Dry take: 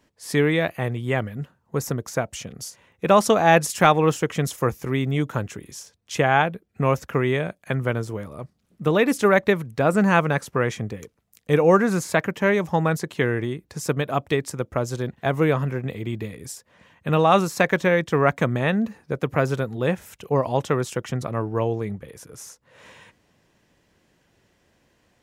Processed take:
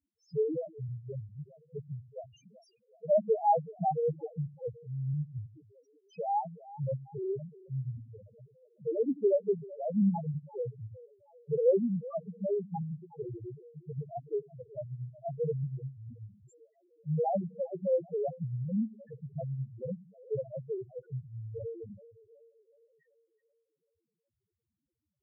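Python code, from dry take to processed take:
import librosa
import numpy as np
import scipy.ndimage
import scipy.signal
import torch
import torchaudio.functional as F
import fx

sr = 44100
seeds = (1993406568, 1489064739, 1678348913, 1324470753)

y = fx.echo_split(x, sr, split_hz=360.0, low_ms=89, high_ms=378, feedback_pct=52, wet_db=-12.0)
y = fx.spec_topn(y, sr, count=1)
y = fx.upward_expand(y, sr, threshold_db=-40.0, expansion=1.5)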